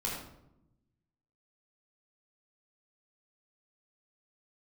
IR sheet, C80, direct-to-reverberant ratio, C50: 4.5 dB, −4.0 dB, 1.5 dB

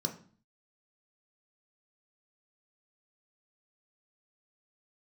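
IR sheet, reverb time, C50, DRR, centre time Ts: 0.45 s, 12.0 dB, 3.0 dB, 14 ms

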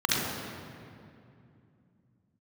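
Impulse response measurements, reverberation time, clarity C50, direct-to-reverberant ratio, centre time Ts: 2.5 s, −4.0 dB, −4.5 dB, 135 ms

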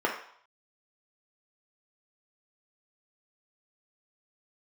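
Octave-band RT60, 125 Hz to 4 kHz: 0.45, 0.40, 0.55, 0.70, 0.55, 0.60 seconds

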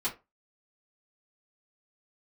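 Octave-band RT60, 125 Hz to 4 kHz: 0.25, 0.25, 0.25, 0.25, 0.20, 0.15 seconds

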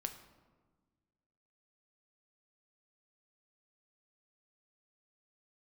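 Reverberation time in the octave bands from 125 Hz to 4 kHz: 2.0, 1.9, 1.5, 1.3, 1.0, 0.75 seconds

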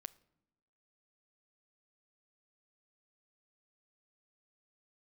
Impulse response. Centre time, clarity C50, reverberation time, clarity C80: 2 ms, 21.5 dB, non-exponential decay, 24.0 dB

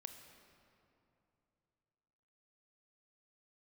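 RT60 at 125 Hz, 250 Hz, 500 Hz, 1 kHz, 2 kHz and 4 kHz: 3.5, 3.1, 3.0, 2.8, 2.2, 1.7 seconds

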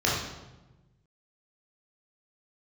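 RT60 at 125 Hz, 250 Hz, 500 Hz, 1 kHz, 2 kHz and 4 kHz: 1.8, 1.5, 1.2, 1.0, 0.85, 0.80 seconds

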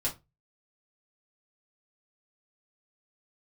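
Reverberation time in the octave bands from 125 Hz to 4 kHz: 0.40, 0.30, 0.25, 0.20, 0.20, 0.15 seconds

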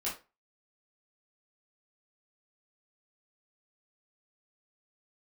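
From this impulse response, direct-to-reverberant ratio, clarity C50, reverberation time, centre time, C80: −7.5 dB, 7.5 dB, 0.30 s, 30 ms, 14.5 dB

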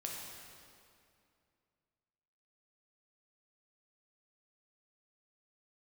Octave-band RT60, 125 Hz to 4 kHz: 2.8, 2.8, 2.5, 2.4, 2.2, 1.9 seconds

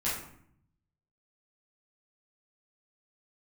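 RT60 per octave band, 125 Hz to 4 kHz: 1.2, 0.95, 0.65, 0.65, 0.60, 0.40 seconds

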